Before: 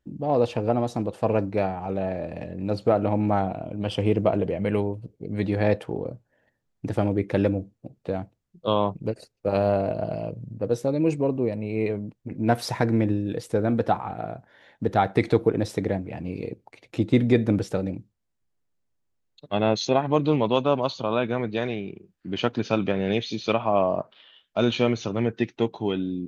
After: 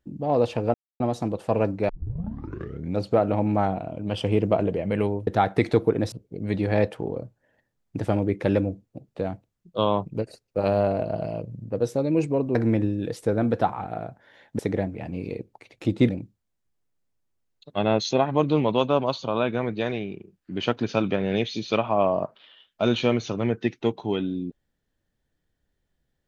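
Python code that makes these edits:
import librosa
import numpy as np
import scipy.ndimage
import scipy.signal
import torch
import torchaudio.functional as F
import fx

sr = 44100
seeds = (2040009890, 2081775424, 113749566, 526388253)

y = fx.edit(x, sr, fx.insert_silence(at_s=0.74, length_s=0.26),
    fx.tape_start(start_s=1.63, length_s=1.1),
    fx.cut(start_s=11.44, length_s=1.38),
    fx.move(start_s=14.86, length_s=0.85, to_s=5.01),
    fx.cut(start_s=17.21, length_s=0.64), tone=tone)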